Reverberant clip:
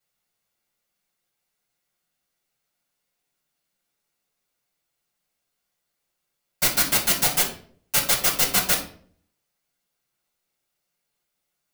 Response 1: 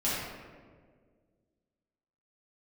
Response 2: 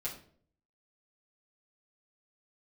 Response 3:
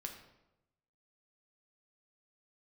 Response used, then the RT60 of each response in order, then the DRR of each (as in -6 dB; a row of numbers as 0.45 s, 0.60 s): 2; 1.8 s, 0.55 s, 0.95 s; -10.0 dB, -8.5 dB, 2.5 dB